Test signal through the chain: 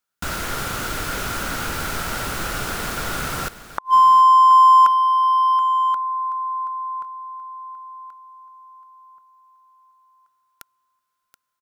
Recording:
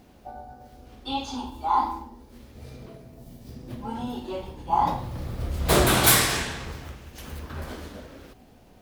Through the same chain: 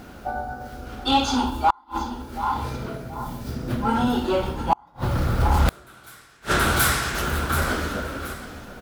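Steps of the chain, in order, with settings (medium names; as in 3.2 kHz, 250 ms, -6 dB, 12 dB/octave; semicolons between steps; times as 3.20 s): peaking EQ 1.4 kHz +13.5 dB 0.31 oct; feedback delay 728 ms, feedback 31%, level -15 dB; inverted gate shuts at -15 dBFS, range -41 dB; in parallel at -6 dB: overload inside the chain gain 30 dB; on the sum: trim +7.5 dB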